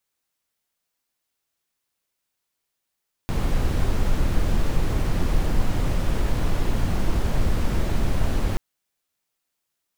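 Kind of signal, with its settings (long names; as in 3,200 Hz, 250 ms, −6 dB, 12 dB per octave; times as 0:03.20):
noise brown, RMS −19.5 dBFS 5.28 s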